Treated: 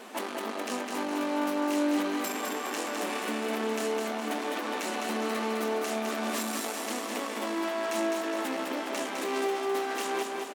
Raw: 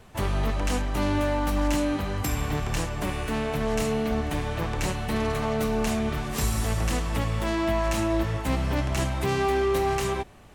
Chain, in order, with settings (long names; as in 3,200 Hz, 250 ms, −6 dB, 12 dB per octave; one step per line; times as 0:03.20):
brickwall limiter −27 dBFS, peak gain reduction 11.5 dB
soft clipping −35 dBFS, distortion −12 dB
linear-phase brick-wall high-pass 210 Hz
on a send: repeating echo 207 ms, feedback 53%, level −4 dB
on the sum: level +9 dB